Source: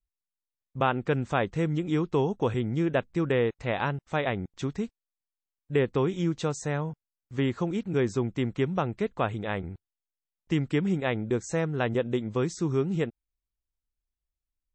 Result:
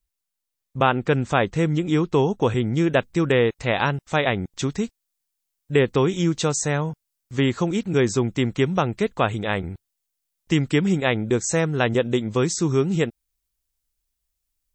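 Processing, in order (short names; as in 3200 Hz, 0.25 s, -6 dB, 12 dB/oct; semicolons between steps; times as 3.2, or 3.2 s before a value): high shelf 3800 Hz +6 dB, from 2.77 s +11 dB; gain +6 dB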